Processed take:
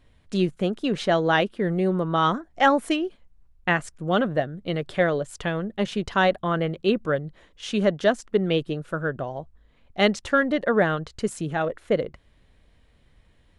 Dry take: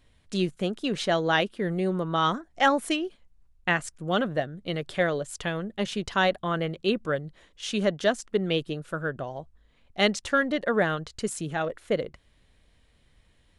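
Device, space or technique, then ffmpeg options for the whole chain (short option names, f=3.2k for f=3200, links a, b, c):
behind a face mask: -af "highshelf=f=2.9k:g=-8,volume=4dB"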